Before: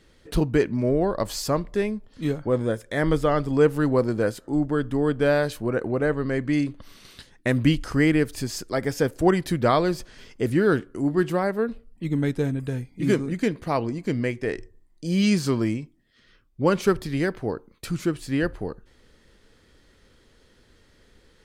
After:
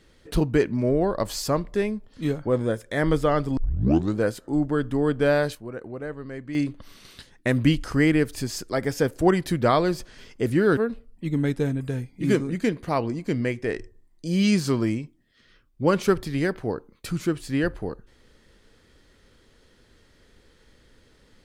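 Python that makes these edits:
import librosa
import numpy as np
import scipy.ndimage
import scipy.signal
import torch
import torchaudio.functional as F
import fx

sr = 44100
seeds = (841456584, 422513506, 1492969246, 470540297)

y = fx.edit(x, sr, fx.tape_start(start_s=3.57, length_s=0.6),
    fx.fade_down_up(start_s=5.43, length_s=1.24, db=-10.5, fade_s=0.12, curve='log'),
    fx.cut(start_s=10.77, length_s=0.79), tone=tone)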